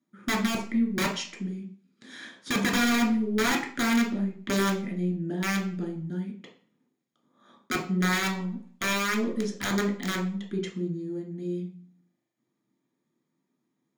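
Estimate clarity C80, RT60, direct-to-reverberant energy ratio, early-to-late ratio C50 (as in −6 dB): 13.5 dB, 0.45 s, −0.5 dB, 9.0 dB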